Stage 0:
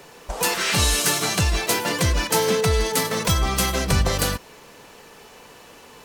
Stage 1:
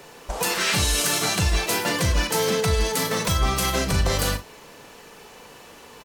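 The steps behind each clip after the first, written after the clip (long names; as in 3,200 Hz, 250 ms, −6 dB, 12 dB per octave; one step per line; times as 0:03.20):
brickwall limiter −12.5 dBFS, peak gain reduction 5 dB
on a send: ambience of single reflections 38 ms −10 dB, 60 ms −17 dB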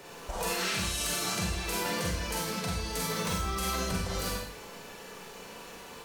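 downward compressor 5 to 1, threshold −29 dBFS, peak gain reduction 11.5 dB
four-comb reverb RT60 0.6 s, combs from 33 ms, DRR −2.5 dB
level −4.5 dB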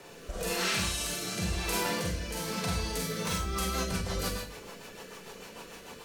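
rotating-speaker cabinet horn 1 Hz, later 6.7 Hz, at 0:02.97
level +2 dB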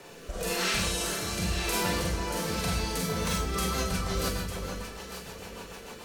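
delay that swaps between a low-pass and a high-pass 451 ms, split 1,600 Hz, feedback 51%, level −4.5 dB
level +1.5 dB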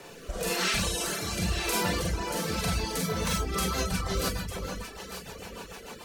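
reverb reduction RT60 0.66 s
level +2 dB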